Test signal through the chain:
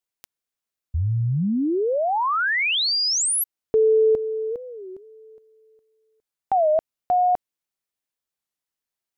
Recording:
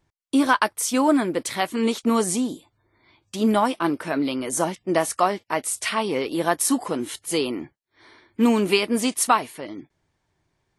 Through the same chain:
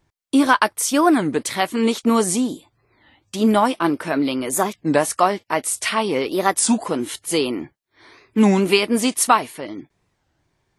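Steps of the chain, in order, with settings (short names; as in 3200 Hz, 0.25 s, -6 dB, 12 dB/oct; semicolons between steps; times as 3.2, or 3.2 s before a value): record warp 33 1/3 rpm, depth 250 cents; gain +3.5 dB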